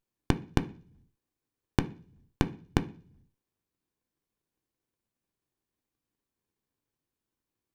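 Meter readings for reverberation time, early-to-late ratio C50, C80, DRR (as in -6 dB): 0.50 s, 18.0 dB, 23.0 dB, 8.0 dB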